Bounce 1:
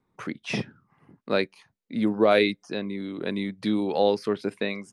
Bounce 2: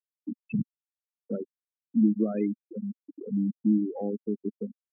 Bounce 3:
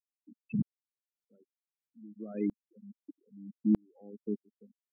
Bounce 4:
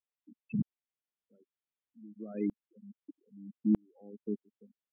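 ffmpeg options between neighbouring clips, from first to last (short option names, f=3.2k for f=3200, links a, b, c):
-filter_complex "[0:a]afftfilt=real='re*gte(hypot(re,im),0.251)':imag='im*gte(hypot(re,im),0.251)':win_size=1024:overlap=0.75,equalizer=f=250:t=o:w=1:g=8,equalizer=f=1k:t=o:w=1:g=6,equalizer=f=2k:t=o:w=1:g=-7,acrossover=split=270|3000[a][b][c];[b]acompressor=threshold=-41dB:ratio=4[d];[a][d][c]amix=inputs=3:normalize=0"
-af "aeval=exprs='val(0)*pow(10,-40*if(lt(mod(-1.6*n/s,1),2*abs(-1.6)/1000),1-mod(-1.6*n/s,1)/(2*abs(-1.6)/1000),(mod(-1.6*n/s,1)-2*abs(-1.6)/1000)/(1-2*abs(-1.6)/1000))/20)':c=same"
-af "aresample=8000,aresample=44100,volume=-1dB"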